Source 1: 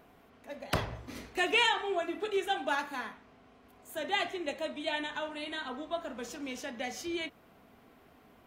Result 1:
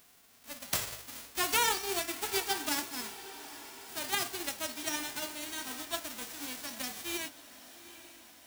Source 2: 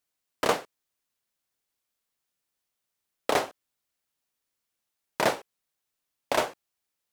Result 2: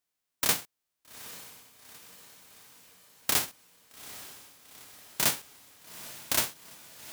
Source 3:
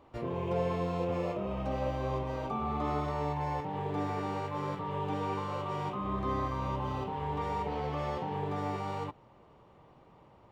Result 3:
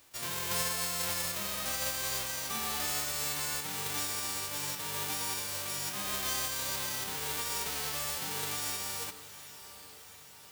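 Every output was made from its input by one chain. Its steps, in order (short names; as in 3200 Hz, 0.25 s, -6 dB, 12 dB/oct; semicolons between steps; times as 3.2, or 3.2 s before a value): spectral whitening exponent 0.1; on a send: diffused feedback echo 0.838 s, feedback 60%, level -15 dB; on the sum: gain -1.5 dB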